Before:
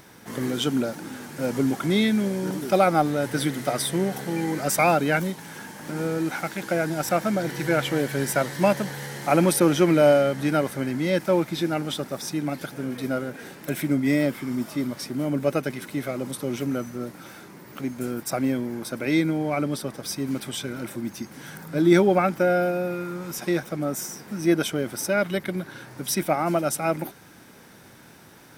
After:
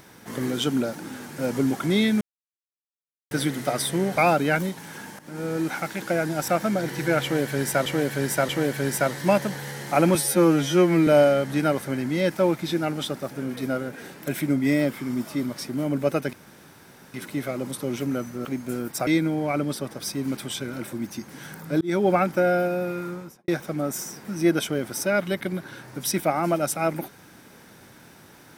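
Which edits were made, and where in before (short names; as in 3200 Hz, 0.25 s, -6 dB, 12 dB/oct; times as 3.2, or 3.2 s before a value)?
2.21–3.31 mute
4.16–4.77 cut
5.8–6.2 fade in, from -13.5 dB
7.84–8.47 loop, 3 plays
9.5–9.96 stretch 2×
12.18–12.7 cut
15.74 insert room tone 0.81 s
17.05–17.77 cut
18.39–19.1 cut
21.84–22.13 fade in
23.09–23.51 studio fade out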